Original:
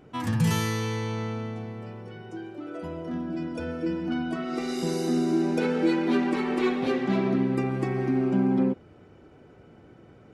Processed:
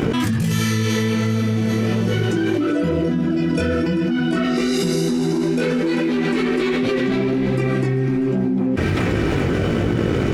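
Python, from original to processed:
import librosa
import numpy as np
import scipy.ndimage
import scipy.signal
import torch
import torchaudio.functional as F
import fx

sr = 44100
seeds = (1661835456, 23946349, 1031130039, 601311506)

p1 = scipy.signal.sosfilt(scipy.signal.butter(2, 45.0, 'highpass', fs=sr, output='sos'), x)
p2 = fx.peak_eq(p1, sr, hz=860.0, db=-14.0, octaves=0.71)
p3 = fx.leveller(p2, sr, passes=1)
p4 = fx.chorus_voices(p3, sr, voices=4, hz=1.3, base_ms=20, depth_ms=3.2, mix_pct=45)
p5 = p4 + fx.echo_wet_highpass(p4, sr, ms=393, feedback_pct=48, hz=1700.0, wet_db=-13, dry=0)
y = fx.env_flatten(p5, sr, amount_pct=100)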